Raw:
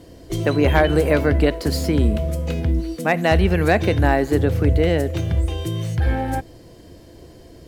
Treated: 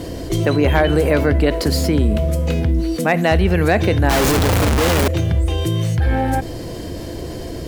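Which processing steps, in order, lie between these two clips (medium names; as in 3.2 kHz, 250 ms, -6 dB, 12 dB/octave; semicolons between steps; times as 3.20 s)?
4.09–5.08 s: one-bit comparator; level flattener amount 50%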